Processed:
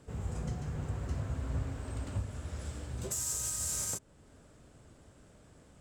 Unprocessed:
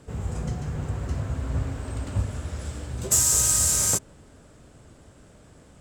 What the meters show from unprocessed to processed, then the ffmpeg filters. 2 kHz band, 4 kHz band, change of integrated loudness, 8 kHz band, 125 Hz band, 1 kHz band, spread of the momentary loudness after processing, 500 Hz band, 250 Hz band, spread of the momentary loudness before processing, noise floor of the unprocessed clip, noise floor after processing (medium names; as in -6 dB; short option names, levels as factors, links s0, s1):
-10.5 dB, -13.5 dB, -12.5 dB, -14.0 dB, -8.0 dB, -10.0 dB, 9 LU, -8.5 dB, -8.0 dB, 16 LU, -53 dBFS, -60 dBFS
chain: -af "alimiter=limit=0.133:level=0:latency=1:release=385,volume=0.447"